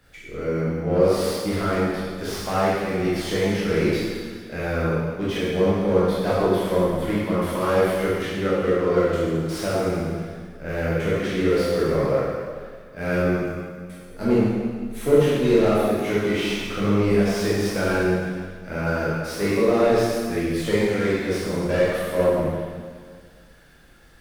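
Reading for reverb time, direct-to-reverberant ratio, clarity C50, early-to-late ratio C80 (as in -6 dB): 1.8 s, -9.0 dB, -3.5 dB, -0.5 dB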